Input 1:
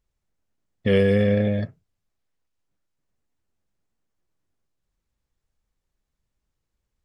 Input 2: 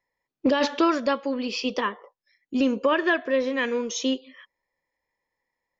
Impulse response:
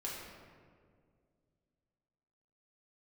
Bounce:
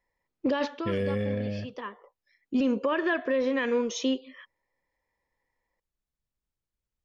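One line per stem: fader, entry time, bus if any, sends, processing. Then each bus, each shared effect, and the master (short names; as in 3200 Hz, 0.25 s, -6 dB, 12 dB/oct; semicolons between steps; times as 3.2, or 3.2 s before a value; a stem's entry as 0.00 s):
-10.0 dB, 0.00 s, no send, dry
+1.0 dB, 0.00 s, no send, high shelf 4300 Hz -9.5 dB; auto duck -15 dB, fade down 0.35 s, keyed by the first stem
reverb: off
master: limiter -18.5 dBFS, peak gain reduction 7 dB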